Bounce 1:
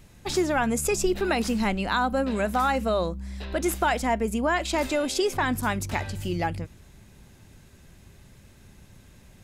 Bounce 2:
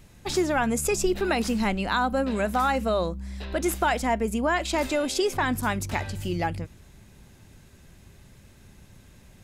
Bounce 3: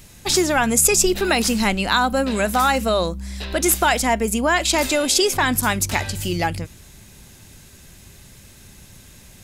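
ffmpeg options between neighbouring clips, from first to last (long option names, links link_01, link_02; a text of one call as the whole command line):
ffmpeg -i in.wav -af anull out.wav
ffmpeg -i in.wav -af "highshelf=frequency=2900:gain=11,volume=4.5dB" out.wav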